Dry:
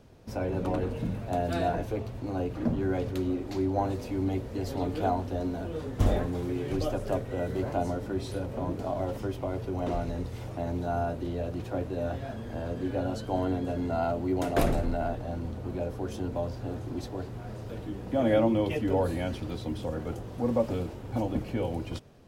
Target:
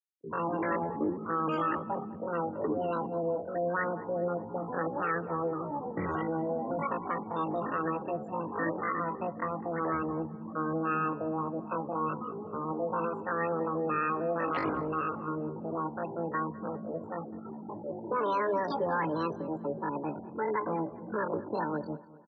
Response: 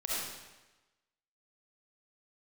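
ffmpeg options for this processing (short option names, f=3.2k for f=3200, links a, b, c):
-filter_complex "[0:a]afftfilt=real='re*gte(hypot(re,im),0.0355)':imag='im*gte(hypot(re,im),0.0355)':win_size=1024:overlap=0.75,alimiter=limit=-22dB:level=0:latency=1:release=60,asetrate=80880,aresample=44100,atempo=0.545254,highpass=f=120:w=0.5412,highpass=f=120:w=1.3066,equalizer=f=130:t=q:w=4:g=-8,equalizer=f=190:t=q:w=4:g=-6,equalizer=f=310:t=q:w=4:g=6,equalizer=f=690:t=q:w=4:g=-3,equalizer=f=1.9k:t=q:w=4:g=9,equalizer=f=3.1k:t=q:w=4:g=-5,lowpass=f=4.4k:w=0.5412,lowpass=f=4.4k:w=1.3066,asplit=2[a][b];[b]adelay=203,lowpass=f=2.2k:p=1,volume=-18dB,asplit=2[c][d];[d]adelay=203,lowpass=f=2.2k:p=1,volume=0.52,asplit=2[e][f];[f]adelay=203,lowpass=f=2.2k:p=1,volume=0.52,asplit=2[g][h];[h]adelay=203,lowpass=f=2.2k:p=1,volume=0.52[i];[c][e][g][i]amix=inputs=4:normalize=0[j];[a][j]amix=inputs=2:normalize=0"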